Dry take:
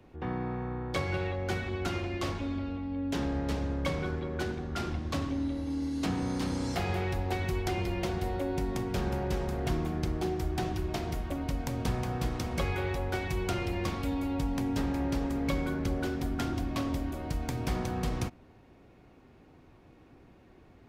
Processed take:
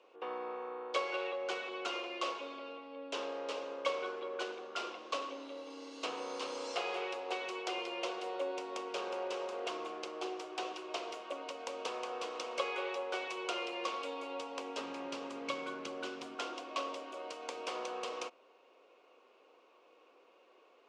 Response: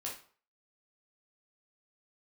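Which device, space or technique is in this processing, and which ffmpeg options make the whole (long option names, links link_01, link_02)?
phone speaker on a table: -filter_complex "[0:a]asplit=3[link_01][link_02][link_03];[link_01]afade=type=out:start_time=14.79:duration=0.02[link_04];[link_02]asubboost=boost=8.5:cutoff=160,afade=type=in:start_time=14.79:duration=0.02,afade=type=out:start_time=16.34:duration=0.02[link_05];[link_03]afade=type=in:start_time=16.34:duration=0.02[link_06];[link_04][link_05][link_06]amix=inputs=3:normalize=0,highpass=frequency=440:width=0.5412,highpass=frequency=440:width=1.3066,equalizer=frequency=500:width_type=q:width=4:gain=7,equalizer=frequency=800:width_type=q:width=4:gain=-4,equalizer=frequency=1100:width_type=q:width=4:gain=7,equalizer=frequency=1800:width_type=q:width=4:gain=-8,equalizer=frequency=2800:width_type=q:width=4:gain=8,lowpass=frequency=7600:width=0.5412,lowpass=frequency=7600:width=1.3066,volume=-3dB"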